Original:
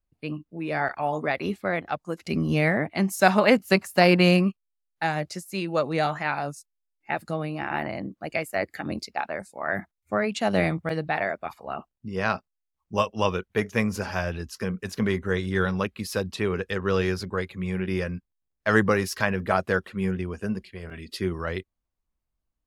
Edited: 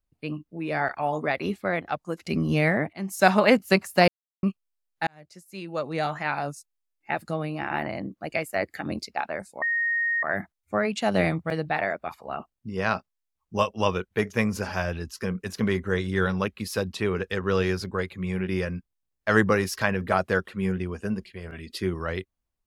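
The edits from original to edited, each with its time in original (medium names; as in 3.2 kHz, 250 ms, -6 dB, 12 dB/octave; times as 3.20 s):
2.93–3.24 s: fade in, from -20 dB
4.08–4.43 s: mute
5.07–6.40 s: fade in
9.62 s: add tone 1.86 kHz -22 dBFS 0.61 s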